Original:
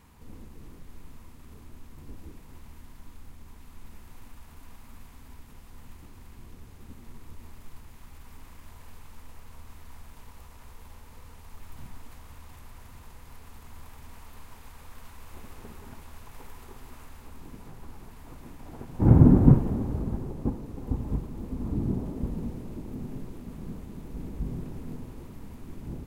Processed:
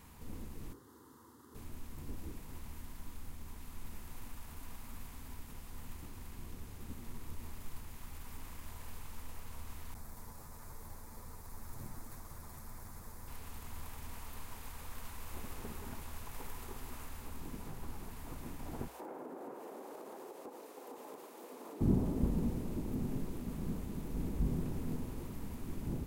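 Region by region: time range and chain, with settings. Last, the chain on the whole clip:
0.73–1.55 HPF 120 Hz 24 dB/oct + high shelf 4100 Hz -8 dB + fixed phaser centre 650 Hz, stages 6
9.94–13.28 minimum comb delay 9 ms + bell 2900 Hz -13.5 dB 0.68 oct
18.88–21.81 HPF 440 Hz 24 dB/oct + compressor, threshold -44 dBFS
whole clip: high shelf 6800 Hz +6 dB; notches 60/120 Hz

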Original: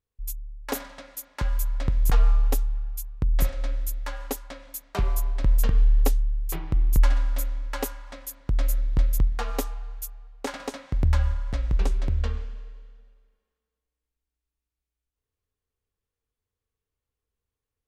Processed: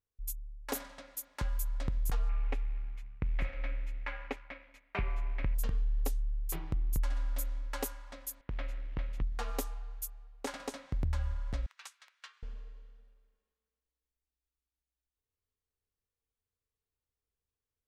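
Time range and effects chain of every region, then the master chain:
2.29–5.55 G.711 law mismatch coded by A + synth low-pass 2300 Hz, resonance Q 4.2
8.41–9.22 G.711 law mismatch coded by A + synth low-pass 2500 Hz, resonance Q 1.7 + low shelf 210 Hz -7.5 dB
11.66–12.43 HPF 1200 Hz 24 dB/oct + upward expander, over -59 dBFS
whole clip: dynamic EQ 9900 Hz, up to +4 dB, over -50 dBFS, Q 0.76; compressor 3:1, threshold -22 dBFS; gain -7 dB

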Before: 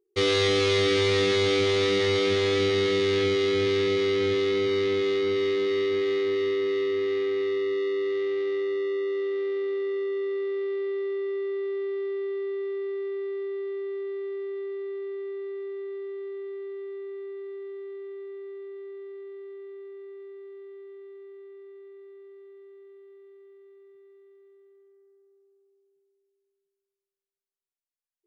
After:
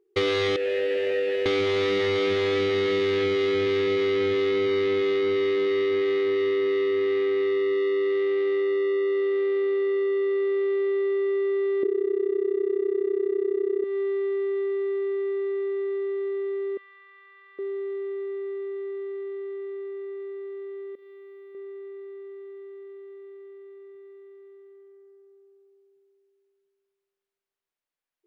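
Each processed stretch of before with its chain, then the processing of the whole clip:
0.56–1.46 half-waves squared off + vowel filter e
11.83–13.84 bell 280 Hz +14.5 dB 1.6 oct + AM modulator 32 Hz, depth 90%
16.77–17.59 HPF 1100 Hz 24 dB/oct + air absorption 87 m + decimation joined by straight lines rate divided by 2×
20.95–21.55 pre-emphasis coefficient 0.9 + flutter echo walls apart 6.1 m, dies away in 0.82 s
whole clip: tone controls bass -5 dB, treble -11 dB; compressor, threshold -30 dBFS; gain +8 dB

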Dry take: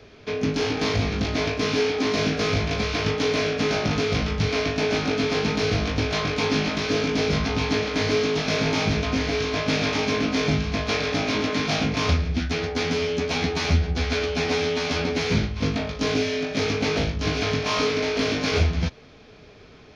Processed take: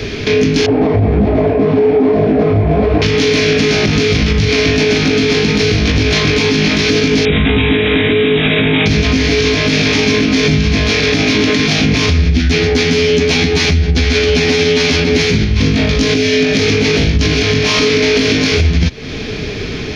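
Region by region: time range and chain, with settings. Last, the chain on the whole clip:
0.66–3.02 LPF 1000 Hz + bell 660 Hz +12 dB 0.93 oct + detuned doubles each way 45 cents
7.25–8.86 brick-wall FIR low-pass 3900 Hz + notches 50/100/150/200/250/300/350 Hz
whole clip: band shelf 860 Hz -8.5 dB; compressor 6:1, threshold -35 dBFS; maximiser +30.5 dB; gain -2.5 dB

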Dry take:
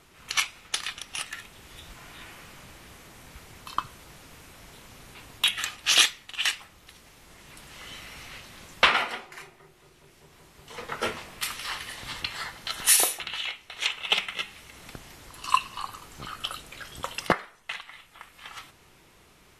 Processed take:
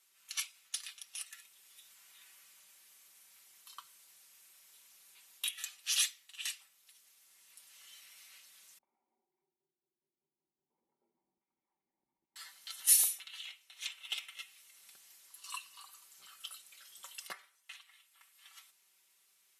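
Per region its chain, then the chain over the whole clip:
8.78–12.36 low shelf 270 Hz +11 dB + compressor, threshold -35 dBFS + vocal tract filter u
whole clip: differentiator; comb 5.2 ms; gain -8.5 dB

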